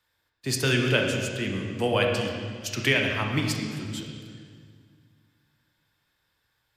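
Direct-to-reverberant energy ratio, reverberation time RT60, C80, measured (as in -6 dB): 1.0 dB, 1.9 s, 4.0 dB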